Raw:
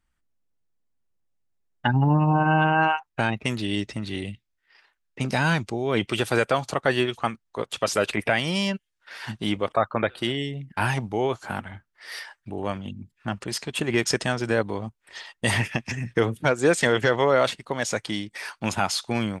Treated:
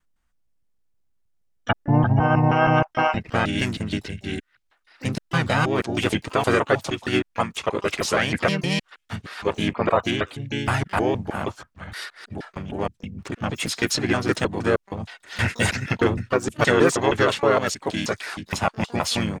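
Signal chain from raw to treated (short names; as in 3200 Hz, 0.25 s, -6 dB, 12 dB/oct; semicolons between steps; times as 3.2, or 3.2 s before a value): slices in reverse order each 0.157 s, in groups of 2; harmoniser -4 st -2 dB, +12 st -18 dB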